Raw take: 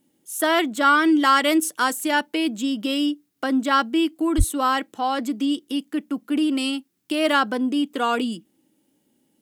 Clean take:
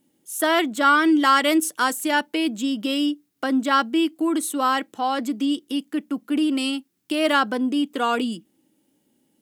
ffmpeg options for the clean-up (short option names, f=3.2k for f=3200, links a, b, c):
-filter_complex "[0:a]asplit=3[a][b][c];[a]afade=t=out:st=4.37:d=0.02[d];[b]highpass=f=140:w=0.5412,highpass=f=140:w=1.3066,afade=t=in:st=4.37:d=0.02,afade=t=out:st=4.49:d=0.02[e];[c]afade=t=in:st=4.49:d=0.02[f];[d][e][f]amix=inputs=3:normalize=0"